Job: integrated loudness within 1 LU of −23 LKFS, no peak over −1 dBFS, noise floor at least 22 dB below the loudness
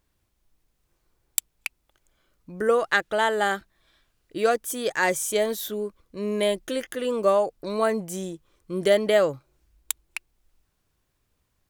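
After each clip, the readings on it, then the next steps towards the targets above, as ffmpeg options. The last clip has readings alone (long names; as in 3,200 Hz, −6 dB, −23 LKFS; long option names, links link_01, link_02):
integrated loudness −25.0 LKFS; sample peak −2.0 dBFS; target loudness −23.0 LKFS
→ -af "volume=2dB,alimiter=limit=-1dB:level=0:latency=1"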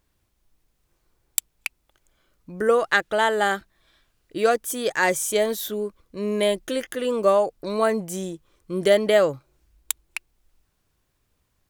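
integrated loudness −23.0 LKFS; sample peak −1.0 dBFS; background noise floor −72 dBFS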